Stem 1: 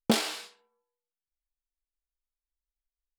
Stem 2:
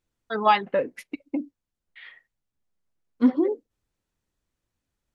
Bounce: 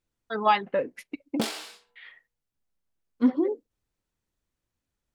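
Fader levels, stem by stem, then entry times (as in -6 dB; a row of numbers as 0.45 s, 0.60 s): -4.0 dB, -2.5 dB; 1.30 s, 0.00 s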